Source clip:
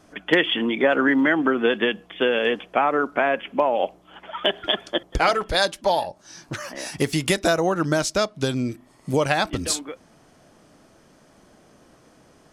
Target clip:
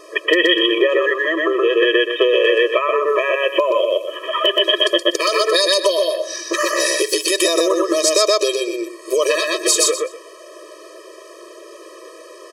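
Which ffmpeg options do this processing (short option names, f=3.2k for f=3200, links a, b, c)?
-filter_complex "[0:a]asettb=1/sr,asplit=3[a][b][c];[a]atrim=end=3.074[d];[b]atrim=start=3.07:end=5.3,asetpts=PTS-STARTPTS,afade=t=in:d=0.004:c=qsin,afade=t=out:st=2.226:d=0.004:c=qsin,highshelf=f=7.1k:g=9.5[e];[c]atrim=start=5.296[f];[d][e]acrossfade=d=0.004:c1=hsin:c2=qsin[g];[g][f]acrossfade=d=0.004:c1=qsin:c2=hsin,aecho=1:1:123|246|369:0.708|0.12|0.0205,acompressor=threshold=-20dB:ratio=4,lowshelf=f=130:g=8,acrossover=split=160|3000[h][i][j];[i]acompressor=threshold=-28dB:ratio=6[k];[h][k][j]amix=inputs=3:normalize=0,alimiter=level_in=15dB:limit=-1dB:release=50:level=0:latency=1,afftfilt=real='re*eq(mod(floor(b*sr/1024/330),2),1)':imag='im*eq(mod(floor(b*sr/1024/330),2),1)':win_size=1024:overlap=0.75,volume=2dB"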